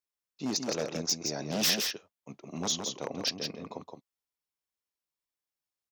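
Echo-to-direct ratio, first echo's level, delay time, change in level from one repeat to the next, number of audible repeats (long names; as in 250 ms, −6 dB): −5.5 dB, −5.5 dB, 167 ms, repeats not evenly spaced, 1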